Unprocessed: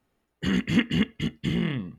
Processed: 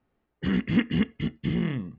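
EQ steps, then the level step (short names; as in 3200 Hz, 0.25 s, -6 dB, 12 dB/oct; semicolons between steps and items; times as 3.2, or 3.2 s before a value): air absorption 330 m; 0.0 dB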